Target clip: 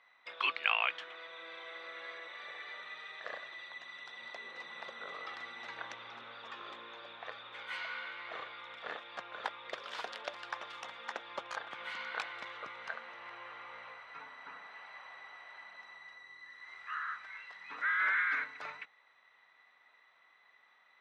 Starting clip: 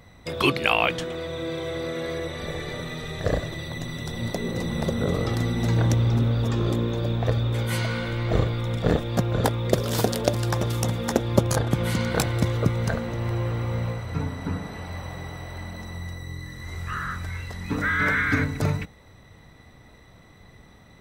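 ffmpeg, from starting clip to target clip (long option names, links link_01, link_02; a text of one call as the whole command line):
ffmpeg -i in.wav -af "asuperpass=centerf=1800:order=4:qfactor=0.8,volume=-7dB" out.wav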